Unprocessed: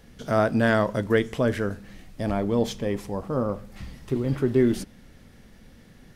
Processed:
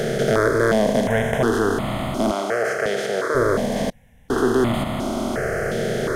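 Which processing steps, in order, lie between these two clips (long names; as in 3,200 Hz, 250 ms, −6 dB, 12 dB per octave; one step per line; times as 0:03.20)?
compressor on every frequency bin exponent 0.2
0:02.31–0:03.35: meter weighting curve A
0:03.90–0:04.30: fill with room tone
step-sequenced phaser 2.8 Hz 280–1,600 Hz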